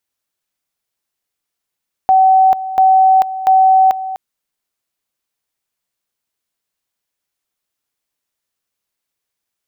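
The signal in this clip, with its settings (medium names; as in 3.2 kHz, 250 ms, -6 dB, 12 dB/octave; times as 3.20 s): two-level tone 760 Hz -6 dBFS, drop 14 dB, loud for 0.44 s, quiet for 0.25 s, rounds 3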